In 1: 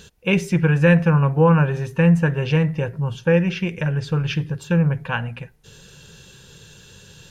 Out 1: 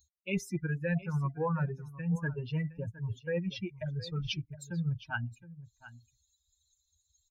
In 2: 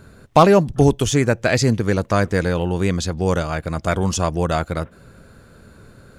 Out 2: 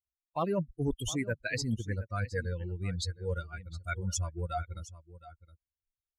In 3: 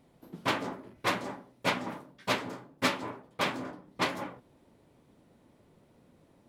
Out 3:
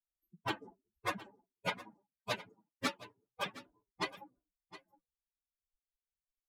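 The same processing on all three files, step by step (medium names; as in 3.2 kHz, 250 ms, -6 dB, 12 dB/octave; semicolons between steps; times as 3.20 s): expander on every frequency bin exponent 3; reverse; compression 5:1, threshold -30 dBFS; reverse; delay 715 ms -16.5 dB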